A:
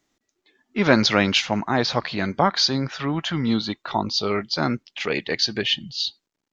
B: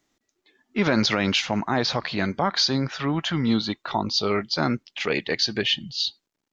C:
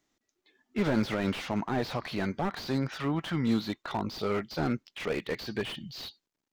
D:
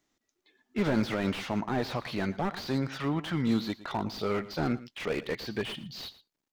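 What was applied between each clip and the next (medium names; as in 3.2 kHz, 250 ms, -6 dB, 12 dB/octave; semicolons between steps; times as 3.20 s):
peak limiter -11 dBFS, peak gain reduction 8 dB
slew-rate limiter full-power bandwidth 70 Hz; trim -5 dB
delay 114 ms -17 dB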